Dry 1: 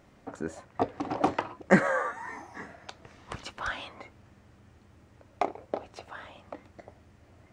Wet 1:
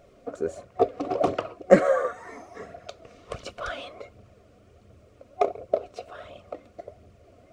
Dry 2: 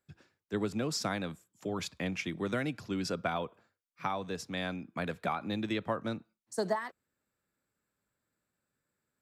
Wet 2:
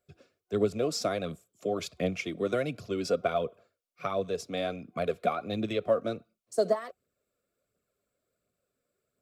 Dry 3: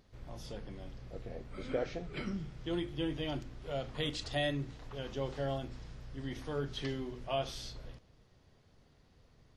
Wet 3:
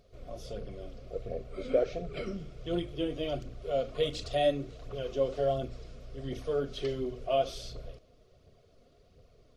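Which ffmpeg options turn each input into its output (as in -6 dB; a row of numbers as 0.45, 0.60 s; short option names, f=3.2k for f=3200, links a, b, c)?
-af "superequalizer=7b=2.51:8b=2.51:9b=0.398:11b=0.501,aphaser=in_gain=1:out_gain=1:delay=4.3:decay=0.41:speed=1.4:type=triangular"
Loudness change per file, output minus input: +5.0, +4.0, +5.5 LU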